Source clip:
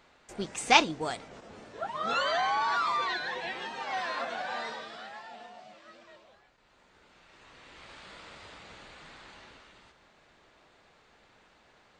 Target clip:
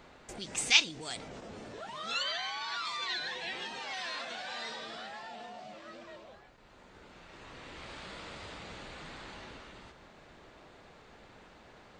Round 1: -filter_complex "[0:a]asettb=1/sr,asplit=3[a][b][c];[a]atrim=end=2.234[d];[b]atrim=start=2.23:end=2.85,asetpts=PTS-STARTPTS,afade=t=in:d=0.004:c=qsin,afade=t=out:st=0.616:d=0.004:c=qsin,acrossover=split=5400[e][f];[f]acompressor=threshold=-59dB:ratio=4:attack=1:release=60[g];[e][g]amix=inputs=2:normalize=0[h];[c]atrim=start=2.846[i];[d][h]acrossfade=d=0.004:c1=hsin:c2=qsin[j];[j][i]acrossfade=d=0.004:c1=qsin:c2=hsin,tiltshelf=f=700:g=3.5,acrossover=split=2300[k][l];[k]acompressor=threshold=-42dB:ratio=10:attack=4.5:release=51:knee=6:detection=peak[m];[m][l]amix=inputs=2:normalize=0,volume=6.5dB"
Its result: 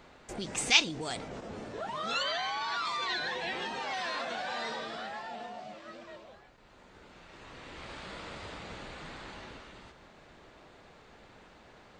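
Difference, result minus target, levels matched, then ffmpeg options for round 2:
compressor: peak gain reduction -7 dB
-filter_complex "[0:a]asettb=1/sr,asplit=3[a][b][c];[a]atrim=end=2.234[d];[b]atrim=start=2.23:end=2.85,asetpts=PTS-STARTPTS,afade=t=in:d=0.004:c=qsin,afade=t=out:st=0.616:d=0.004:c=qsin,acrossover=split=5400[e][f];[f]acompressor=threshold=-59dB:ratio=4:attack=1:release=60[g];[e][g]amix=inputs=2:normalize=0[h];[c]atrim=start=2.846[i];[d][h]acrossfade=d=0.004:c1=hsin:c2=qsin[j];[j][i]acrossfade=d=0.004:c1=qsin:c2=hsin,tiltshelf=f=700:g=3.5,acrossover=split=2300[k][l];[k]acompressor=threshold=-50dB:ratio=10:attack=4.5:release=51:knee=6:detection=peak[m];[m][l]amix=inputs=2:normalize=0,volume=6.5dB"

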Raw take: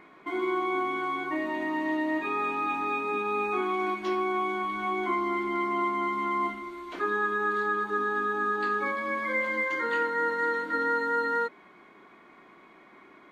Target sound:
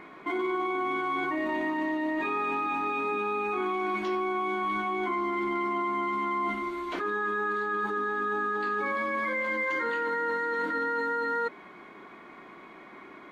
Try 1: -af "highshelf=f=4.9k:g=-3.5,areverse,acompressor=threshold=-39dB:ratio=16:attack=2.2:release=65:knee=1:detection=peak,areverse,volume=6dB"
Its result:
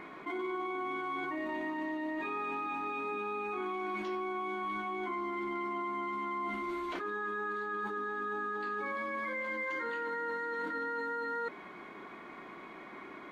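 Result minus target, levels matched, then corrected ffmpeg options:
compressor: peak gain reduction +7 dB
-af "highshelf=f=4.9k:g=-3.5,areverse,acompressor=threshold=-31.5dB:ratio=16:attack=2.2:release=65:knee=1:detection=peak,areverse,volume=6dB"

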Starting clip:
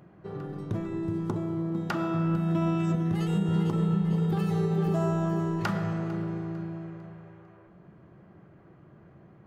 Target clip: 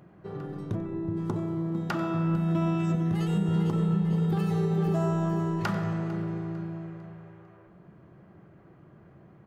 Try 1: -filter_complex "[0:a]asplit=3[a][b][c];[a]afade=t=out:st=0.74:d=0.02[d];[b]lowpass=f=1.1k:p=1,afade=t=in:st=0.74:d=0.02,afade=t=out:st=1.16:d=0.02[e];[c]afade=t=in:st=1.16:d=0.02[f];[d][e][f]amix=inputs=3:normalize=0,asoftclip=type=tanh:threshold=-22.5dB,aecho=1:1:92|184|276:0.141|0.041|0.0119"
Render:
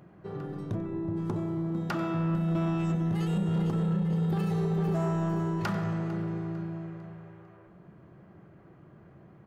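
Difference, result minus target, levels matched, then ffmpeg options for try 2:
soft clip: distortion +17 dB
-filter_complex "[0:a]asplit=3[a][b][c];[a]afade=t=out:st=0.74:d=0.02[d];[b]lowpass=f=1.1k:p=1,afade=t=in:st=0.74:d=0.02,afade=t=out:st=1.16:d=0.02[e];[c]afade=t=in:st=1.16:d=0.02[f];[d][e][f]amix=inputs=3:normalize=0,asoftclip=type=tanh:threshold=-12dB,aecho=1:1:92|184|276:0.141|0.041|0.0119"

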